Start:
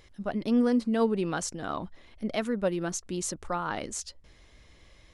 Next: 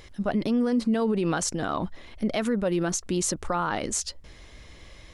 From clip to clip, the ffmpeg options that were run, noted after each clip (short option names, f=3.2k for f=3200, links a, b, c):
-af "alimiter=level_in=1.5dB:limit=-24dB:level=0:latency=1:release=55,volume=-1.5dB,volume=8.5dB"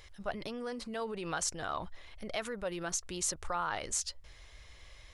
-af "equalizer=f=240:w=0.87:g=-15,volume=-5dB"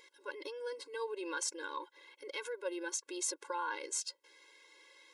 -af "afftfilt=real='re*eq(mod(floor(b*sr/1024/280),2),1)':imag='im*eq(mod(floor(b*sr/1024/280),2),1)':win_size=1024:overlap=0.75"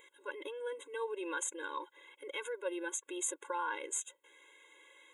-af "asuperstop=centerf=4900:order=20:qfactor=2,volume=1dB"